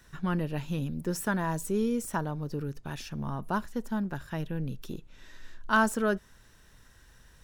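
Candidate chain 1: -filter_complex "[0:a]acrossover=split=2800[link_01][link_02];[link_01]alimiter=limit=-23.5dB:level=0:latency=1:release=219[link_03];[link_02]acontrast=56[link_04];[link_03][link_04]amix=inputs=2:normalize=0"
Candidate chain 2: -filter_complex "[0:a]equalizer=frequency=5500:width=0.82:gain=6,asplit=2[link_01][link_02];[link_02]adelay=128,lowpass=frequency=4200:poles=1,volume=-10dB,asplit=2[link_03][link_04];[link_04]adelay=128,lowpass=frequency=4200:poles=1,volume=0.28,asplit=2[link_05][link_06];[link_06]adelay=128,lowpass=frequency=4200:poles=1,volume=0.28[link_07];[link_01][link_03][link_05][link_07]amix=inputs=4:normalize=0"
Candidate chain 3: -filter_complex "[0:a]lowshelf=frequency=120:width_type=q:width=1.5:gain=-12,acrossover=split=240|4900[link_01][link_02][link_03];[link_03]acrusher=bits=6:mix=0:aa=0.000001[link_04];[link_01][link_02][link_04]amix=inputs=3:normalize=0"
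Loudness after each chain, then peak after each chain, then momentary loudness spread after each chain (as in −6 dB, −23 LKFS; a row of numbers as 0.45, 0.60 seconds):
−34.0, −31.0, −30.5 LKFS; −18.0, −11.5, −10.5 dBFS; 11, 16, 12 LU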